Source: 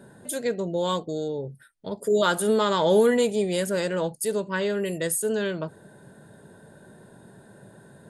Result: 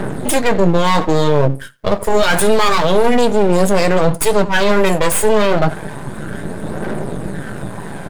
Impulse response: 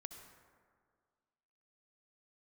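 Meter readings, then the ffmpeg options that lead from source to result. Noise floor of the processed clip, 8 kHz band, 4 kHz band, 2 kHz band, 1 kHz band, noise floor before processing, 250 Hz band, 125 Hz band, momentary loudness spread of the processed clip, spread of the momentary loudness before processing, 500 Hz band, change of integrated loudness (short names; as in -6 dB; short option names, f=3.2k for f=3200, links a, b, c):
-29 dBFS, +9.5 dB, +10.5 dB, +13.0 dB, +13.5 dB, -52 dBFS, +11.0 dB, +15.5 dB, 14 LU, 14 LU, +9.0 dB, +9.5 dB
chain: -filter_complex "[0:a]highpass=f=110:w=0.5412,highpass=f=110:w=1.3066,asplit=2[a][b];[b]adynamicsmooth=sensitivity=8:basefreq=3.7k,volume=-2dB[c];[a][c]amix=inputs=2:normalize=0,aphaser=in_gain=1:out_gain=1:delay=1.9:decay=0.5:speed=0.29:type=triangular,asplit=2[d][e];[e]adelay=89,lowpass=f=2.3k:p=1,volume=-22.5dB,asplit=2[f][g];[g]adelay=89,lowpass=f=2.3k:p=1,volume=0.28[h];[d][f][h]amix=inputs=3:normalize=0,aeval=exprs='max(val(0),0)':c=same,areverse,acompressor=threshold=-27dB:ratio=10,areverse,flanger=delay=6.2:depth=5:regen=-54:speed=0.69:shape=triangular,alimiter=level_in=26.5dB:limit=-1dB:release=50:level=0:latency=1,volume=-1dB"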